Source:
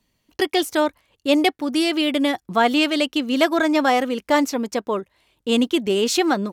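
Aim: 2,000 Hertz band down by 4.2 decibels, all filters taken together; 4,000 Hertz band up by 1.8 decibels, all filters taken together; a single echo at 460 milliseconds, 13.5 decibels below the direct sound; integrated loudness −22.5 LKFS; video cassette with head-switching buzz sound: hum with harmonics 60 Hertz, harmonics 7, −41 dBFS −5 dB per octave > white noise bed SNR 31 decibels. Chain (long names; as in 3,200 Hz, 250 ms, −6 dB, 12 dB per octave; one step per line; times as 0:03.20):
parametric band 2,000 Hz −7.5 dB
parametric band 4,000 Hz +5.5 dB
single-tap delay 460 ms −13.5 dB
hum with harmonics 60 Hz, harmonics 7, −41 dBFS −5 dB per octave
white noise bed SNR 31 dB
level −2 dB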